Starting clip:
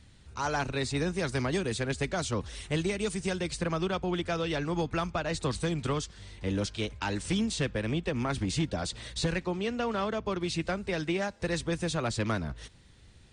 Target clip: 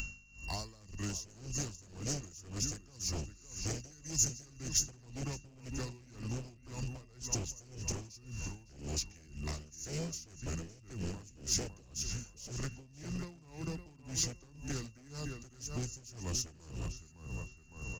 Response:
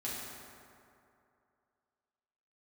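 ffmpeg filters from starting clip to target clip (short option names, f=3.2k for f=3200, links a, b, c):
-filter_complex "[0:a]equalizer=f=4.4k:t=o:w=1.3:g=-8.5,aeval=exprs='val(0)+0.00562*sin(2*PI*3700*n/s)':c=same,lowshelf=f=85:g=6,asplit=2[a][b];[b]adelay=415,lowpass=f=4k:p=1,volume=-8dB,asplit=2[c][d];[d]adelay=415,lowpass=f=4k:p=1,volume=0.38,asplit=2[e][f];[f]adelay=415,lowpass=f=4k:p=1,volume=0.38,asplit=2[g][h];[h]adelay=415,lowpass=f=4k:p=1,volume=0.38[i];[a][c][e][g][i]amix=inputs=5:normalize=0,acrossover=split=330|3000[j][k][l];[k]acompressor=threshold=-52dB:ratio=2[m];[j][m][l]amix=inputs=3:normalize=0,asetrate=32667,aresample=44100,aresample=16000,aeval=exprs='0.0376*(abs(mod(val(0)/0.0376+3,4)-2)-1)':c=same,aresample=44100,aeval=exprs='val(0)+0.00282*(sin(2*PI*50*n/s)+sin(2*PI*2*50*n/s)/2+sin(2*PI*3*50*n/s)/3+sin(2*PI*4*50*n/s)/4+sin(2*PI*5*50*n/s)/5)':c=same,asplit=2[n][o];[o]asoftclip=type=hard:threshold=-37dB,volume=-10dB[p];[n][p]amix=inputs=2:normalize=0,acompressor=threshold=-47dB:ratio=4,aexciter=amount=6.6:drive=8:freq=5k,aeval=exprs='val(0)*pow(10,-22*(0.5-0.5*cos(2*PI*1.9*n/s))/20)':c=same,volume=9dB"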